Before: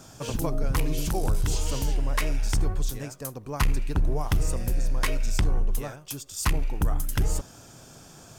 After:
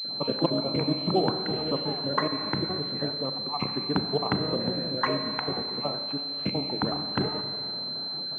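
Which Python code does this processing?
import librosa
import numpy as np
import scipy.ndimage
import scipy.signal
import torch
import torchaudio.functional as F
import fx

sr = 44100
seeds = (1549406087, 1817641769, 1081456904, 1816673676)

p1 = fx.spec_dropout(x, sr, seeds[0], share_pct=31)
p2 = fx.rev_schroeder(p1, sr, rt60_s=2.4, comb_ms=29, drr_db=7.0)
p3 = fx.quant_dither(p2, sr, seeds[1], bits=8, dither='triangular')
p4 = p2 + (p3 * librosa.db_to_amplitude(-7.0))
p5 = scipy.signal.sosfilt(scipy.signal.butter(4, 170.0, 'highpass', fs=sr, output='sos'), p4)
p6 = fx.air_absorb(p5, sr, metres=310.0)
p7 = fx.pwm(p6, sr, carrier_hz=4100.0)
y = p7 * librosa.db_to_amplitude(4.5)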